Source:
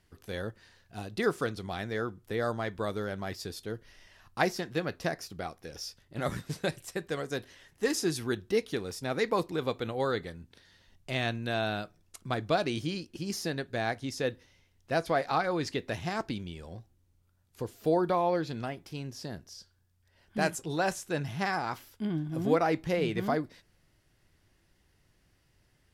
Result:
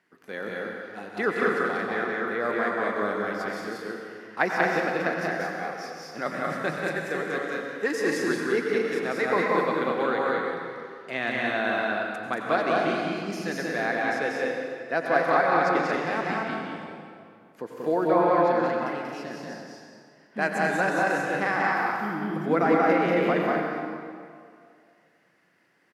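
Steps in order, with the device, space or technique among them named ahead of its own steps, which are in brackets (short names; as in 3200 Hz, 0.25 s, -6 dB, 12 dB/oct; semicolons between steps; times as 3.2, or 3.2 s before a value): stadium PA (HPF 190 Hz 24 dB/oct; bell 3400 Hz +6.5 dB 2.2 oct; loudspeakers at several distances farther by 64 m -2 dB, 77 m -4 dB, 91 m -12 dB; reverb RT60 2.2 s, pre-delay 85 ms, DRR 2 dB); resonant high shelf 2500 Hz -10 dB, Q 1.5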